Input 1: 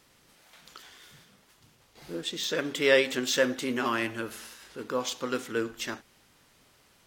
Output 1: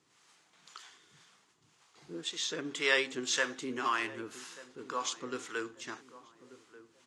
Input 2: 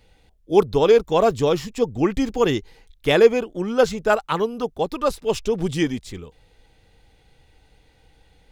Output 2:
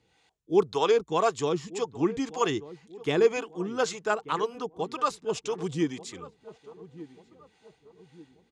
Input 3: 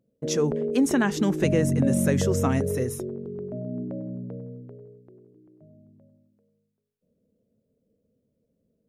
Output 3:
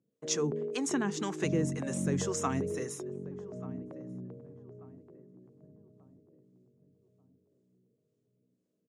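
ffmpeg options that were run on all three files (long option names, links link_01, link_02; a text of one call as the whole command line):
ffmpeg -i in.wav -filter_complex "[0:a]acrossover=split=500[link_01][link_02];[link_01]aeval=exprs='val(0)*(1-0.7/2+0.7/2*cos(2*PI*1.9*n/s))':channel_layout=same[link_03];[link_02]aeval=exprs='val(0)*(1-0.7/2-0.7/2*cos(2*PI*1.9*n/s))':channel_layout=same[link_04];[link_03][link_04]amix=inputs=2:normalize=0,highpass=160,equalizer=frequency=230:width_type=q:width=4:gain=-7,equalizer=frequency=560:width_type=q:width=4:gain=-9,equalizer=frequency=1100:width_type=q:width=4:gain=4,equalizer=frequency=6900:width_type=q:width=4:gain=5,lowpass=frequency=9100:width=0.5412,lowpass=frequency=9100:width=1.3066,asplit=2[link_05][link_06];[link_06]adelay=1187,lowpass=frequency=820:poles=1,volume=-15.5dB,asplit=2[link_07][link_08];[link_08]adelay=1187,lowpass=frequency=820:poles=1,volume=0.46,asplit=2[link_09][link_10];[link_10]adelay=1187,lowpass=frequency=820:poles=1,volume=0.46,asplit=2[link_11][link_12];[link_12]adelay=1187,lowpass=frequency=820:poles=1,volume=0.46[link_13];[link_07][link_09][link_11][link_13]amix=inputs=4:normalize=0[link_14];[link_05][link_14]amix=inputs=2:normalize=0,volume=-2dB" out.wav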